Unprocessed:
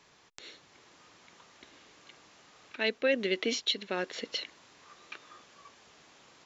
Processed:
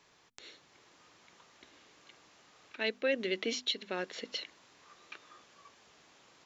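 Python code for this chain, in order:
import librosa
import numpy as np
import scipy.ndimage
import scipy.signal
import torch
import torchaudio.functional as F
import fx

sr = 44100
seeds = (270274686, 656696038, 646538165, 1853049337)

y = fx.hum_notches(x, sr, base_hz=50, count=5)
y = F.gain(torch.from_numpy(y), -3.5).numpy()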